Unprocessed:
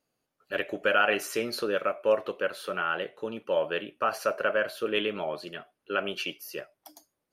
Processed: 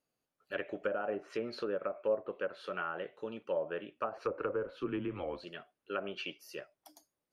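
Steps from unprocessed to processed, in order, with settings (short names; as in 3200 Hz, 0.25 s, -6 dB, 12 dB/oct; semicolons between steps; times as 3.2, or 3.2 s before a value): 4.17–5.44 frequency shift -90 Hz; treble ducked by the level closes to 720 Hz, closed at -22.5 dBFS; gain -6.5 dB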